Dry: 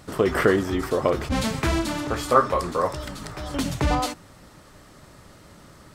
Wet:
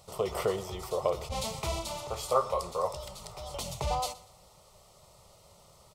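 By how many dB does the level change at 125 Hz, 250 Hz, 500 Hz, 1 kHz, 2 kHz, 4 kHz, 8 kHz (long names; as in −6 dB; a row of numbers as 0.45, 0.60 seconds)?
−11.5, −19.0, −8.0, −8.0, −17.0, −6.0, −4.0 decibels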